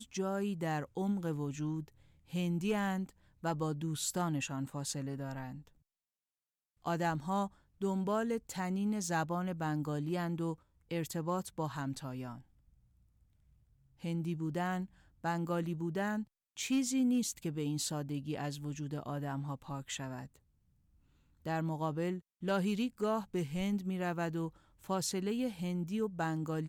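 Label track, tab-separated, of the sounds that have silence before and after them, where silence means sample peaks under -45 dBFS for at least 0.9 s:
6.860000	12.380000	sound
14.040000	20.360000	sound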